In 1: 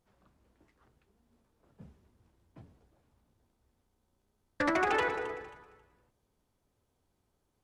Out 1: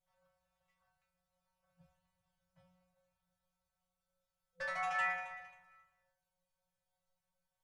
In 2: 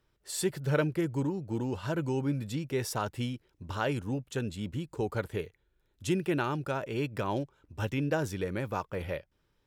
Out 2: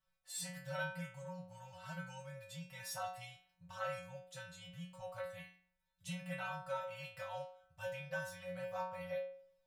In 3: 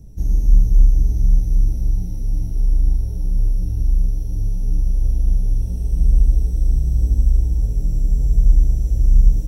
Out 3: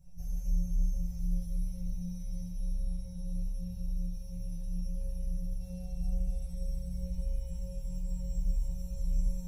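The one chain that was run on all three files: metallic resonator 180 Hz, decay 0.6 s, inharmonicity 0.002; FFT band-reject 180–510 Hz; gain +7 dB

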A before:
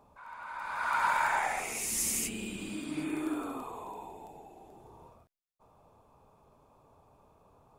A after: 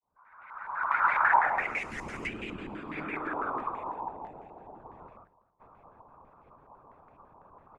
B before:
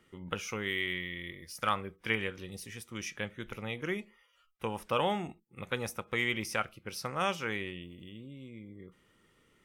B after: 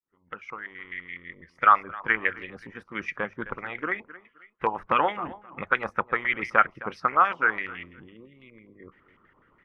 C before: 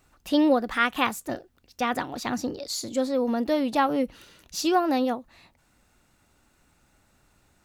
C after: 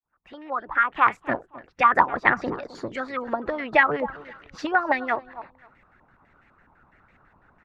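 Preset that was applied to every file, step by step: opening faded in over 1.95 s; notches 50/100 Hz; harmonic-percussive split harmonic -18 dB; on a send: feedback echo 0.262 s, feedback 24%, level -18 dB; on the sum: stepped low-pass 12 Hz 980–2100 Hz; gain +8 dB

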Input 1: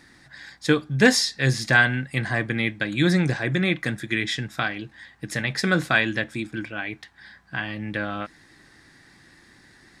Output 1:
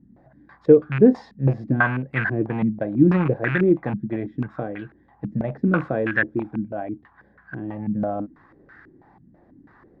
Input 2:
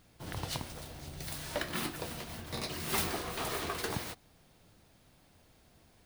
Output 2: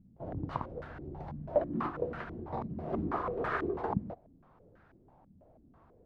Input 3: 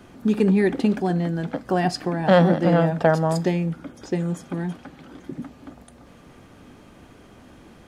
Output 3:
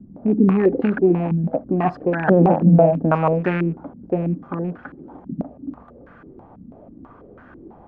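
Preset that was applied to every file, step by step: rattling part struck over -26 dBFS, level -17 dBFS; stepped low-pass 6.1 Hz 210–1500 Hz

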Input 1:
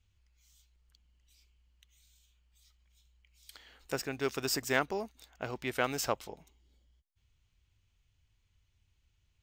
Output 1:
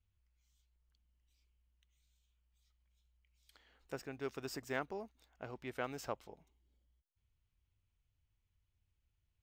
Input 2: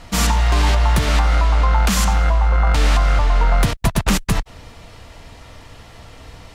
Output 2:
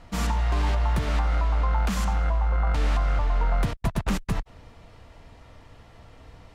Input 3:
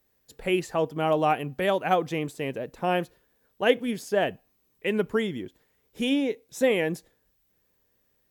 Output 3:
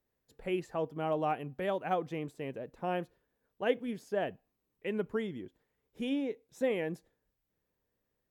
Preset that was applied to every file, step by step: high shelf 2600 Hz -9 dB; gain -8 dB

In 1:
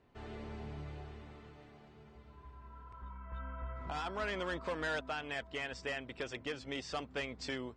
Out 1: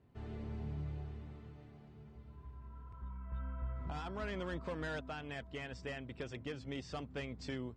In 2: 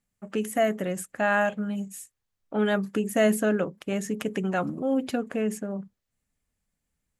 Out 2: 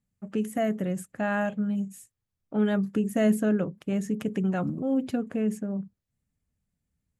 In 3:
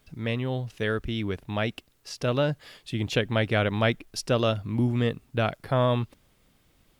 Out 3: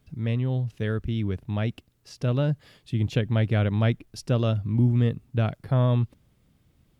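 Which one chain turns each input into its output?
bell 110 Hz +13 dB 2.9 oct; gain -7 dB

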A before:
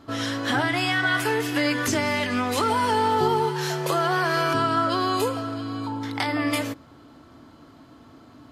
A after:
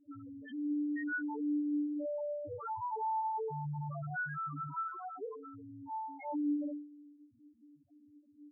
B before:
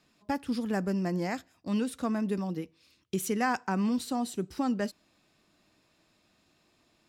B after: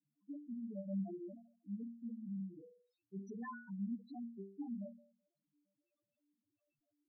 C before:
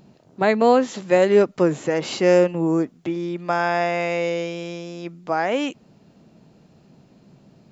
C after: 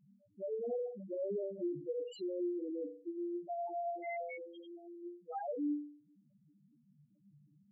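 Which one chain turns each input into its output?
resonator bank G2 minor, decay 0.53 s; limiter -31 dBFS; loudest bins only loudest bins 2; gain +5.5 dB

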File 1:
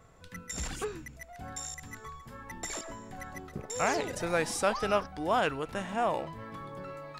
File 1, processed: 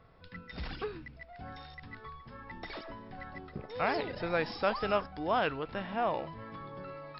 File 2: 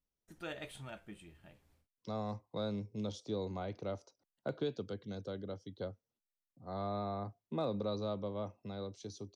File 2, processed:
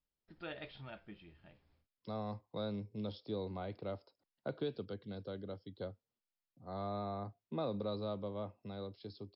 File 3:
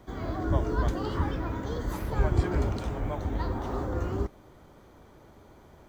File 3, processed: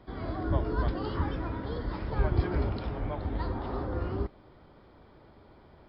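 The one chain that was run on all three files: gain -1.5 dB; MP3 48 kbps 12000 Hz

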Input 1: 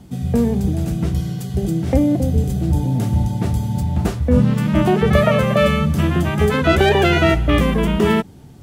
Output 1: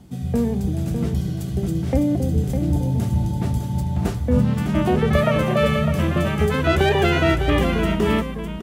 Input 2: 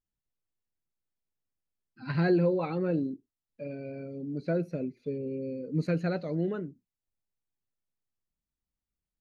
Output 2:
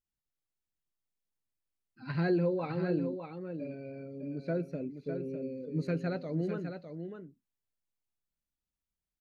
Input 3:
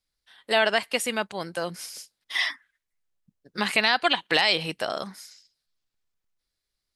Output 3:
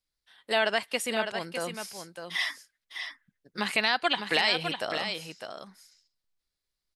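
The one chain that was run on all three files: echo 0.605 s -7.5 dB; gain -4 dB

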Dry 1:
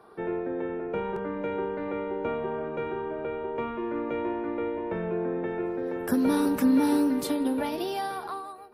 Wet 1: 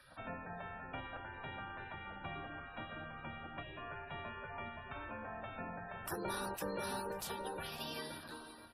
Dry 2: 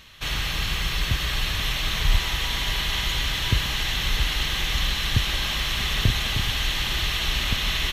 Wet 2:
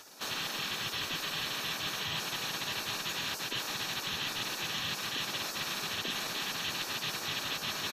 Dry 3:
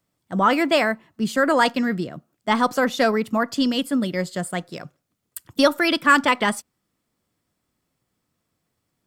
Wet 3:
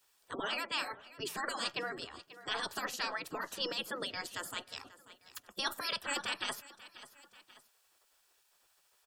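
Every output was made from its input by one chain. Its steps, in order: spectral gate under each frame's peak -15 dB weak; reverse; compressor, threshold -28 dBFS; reverse; spectral gate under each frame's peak -25 dB strong; notch 2100 Hz, Q 7.9; on a send: feedback echo 0.537 s, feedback 28%, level -21.5 dB; on the sum: three-band squash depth 40%; gain -3 dB

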